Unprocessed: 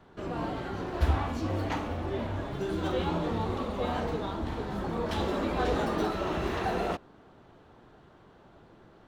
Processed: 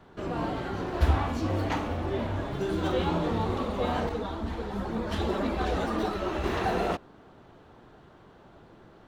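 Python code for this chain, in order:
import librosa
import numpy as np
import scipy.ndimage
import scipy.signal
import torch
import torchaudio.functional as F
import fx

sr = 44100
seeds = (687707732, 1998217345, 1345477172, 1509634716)

y = fx.chorus_voices(x, sr, voices=4, hz=1.0, base_ms=12, depth_ms=3.0, mix_pct=65, at=(4.09, 6.44))
y = y * 10.0 ** (2.5 / 20.0)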